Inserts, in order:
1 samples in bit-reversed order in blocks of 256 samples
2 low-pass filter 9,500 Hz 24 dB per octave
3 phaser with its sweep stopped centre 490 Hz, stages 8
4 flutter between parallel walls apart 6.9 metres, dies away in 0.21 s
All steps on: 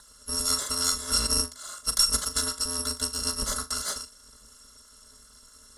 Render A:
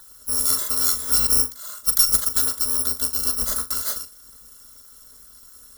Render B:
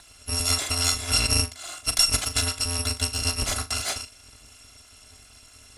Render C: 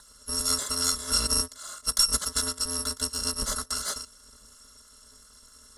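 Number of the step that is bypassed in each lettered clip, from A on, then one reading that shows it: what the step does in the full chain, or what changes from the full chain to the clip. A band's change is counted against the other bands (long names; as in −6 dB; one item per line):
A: 2, 8 kHz band +4.5 dB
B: 3, change in integrated loudness +2.5 LU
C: 4, echo-to-direct ratio −11.0 dB to none audible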